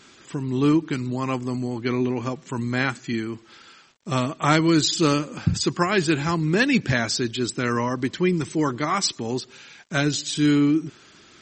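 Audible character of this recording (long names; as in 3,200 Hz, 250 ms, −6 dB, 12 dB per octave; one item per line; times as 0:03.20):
a quantiser's noise floor 10 bits, dither none
MP3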